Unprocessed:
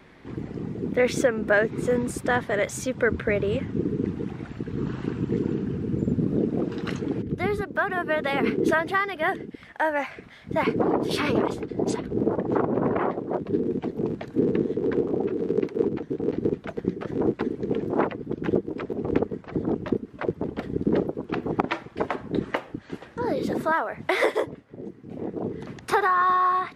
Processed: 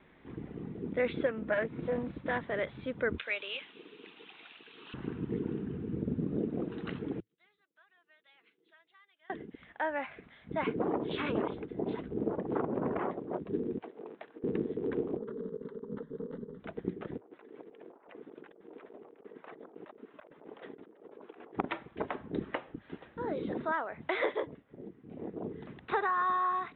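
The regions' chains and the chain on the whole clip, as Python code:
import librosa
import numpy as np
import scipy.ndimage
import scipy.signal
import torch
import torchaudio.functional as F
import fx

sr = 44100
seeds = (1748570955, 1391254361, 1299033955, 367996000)

y = fx.chain(x, sr, fx.notch_comb(f0_hz=400.0),
    fx.doppler_dist(depth_ms=0.28), at=(1.26, 2.44))
y = fx.chain(y, sr, fx.highpass(hz=890.0, slope=12),
    fx.band_shelf(hz=3400.0, db=13.5, octaves=1.2), at=(3.18, 4.94))
y = fx.chain(y, sr, fx.bandpass_q(hz=5800.0, q=8.1),
    fx.comb(ms=6.0, depth=0.35), at=(7.2, 9.3))
y = fx.chain(y, sr, fx.highpass(hz=620.0, slope=12),
    fx.over_compress(threshold_db=-35.0, ratio=-0.5),
    fx.resample_linear(factor=6), at=(13.78, 14.44))
y = fx.chain(y, sr, fx.over_compress(threshold_db=-28.0, ratio=-0.5),
    fx.fixed_phaser(hz=490.0, stages=8), at=(15.17, 16.6))
y = fx.chain(y, sr, fx.highpass(hz=560.0, slope=12),
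    fx.high_shelf(hz=5000.0, db=-11.0),
    fx.over_compress(threshold_db=-44.0, ratio=-1.0), at=(17.17, 21.56))
y = scipy.signal.sosfilt(scipy.signal.butter(16, 3800.0, 'lowpass', fs=sr, output='sos'), y)
y = fx.peak_eq(y, sr, hz=110.0, db=-6.0, octaves=0.25)
y = y * librosa.db_to_amplitude(-9.0)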